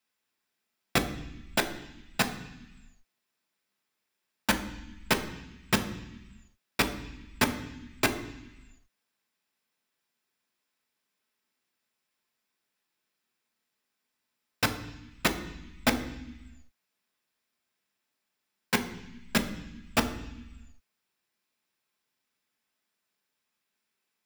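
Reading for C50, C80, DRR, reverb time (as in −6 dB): 11.5 dB, 13.5 dB, 5.5 dB, 0.95 s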